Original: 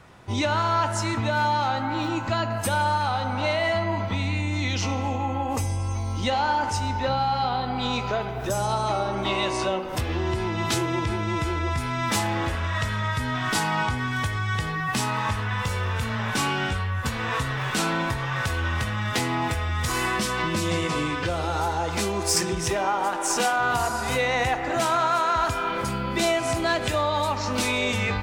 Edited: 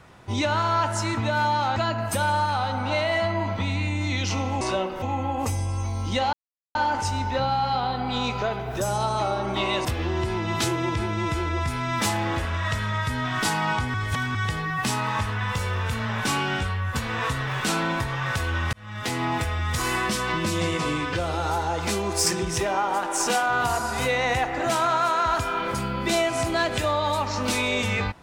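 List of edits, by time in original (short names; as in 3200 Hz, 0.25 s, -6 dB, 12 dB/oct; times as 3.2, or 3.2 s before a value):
1.76–2.28 cut
6.44 insert silence 0.42 s
9.54–9.95 move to 5.13
14.04–14.45 reverse
18.83–19.34 fade in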